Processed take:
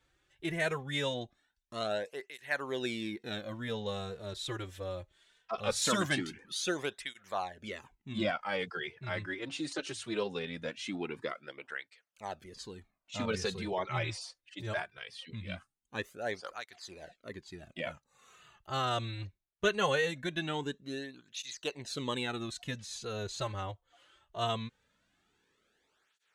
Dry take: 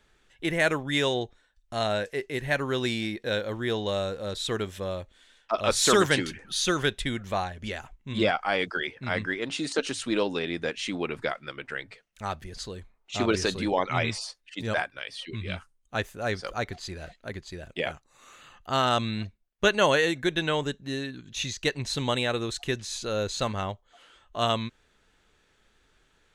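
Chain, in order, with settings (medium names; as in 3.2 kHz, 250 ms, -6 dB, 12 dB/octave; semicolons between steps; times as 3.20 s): cancelling through-zero flanger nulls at 0.21 Hz, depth 4.9 ms; trim -5 dB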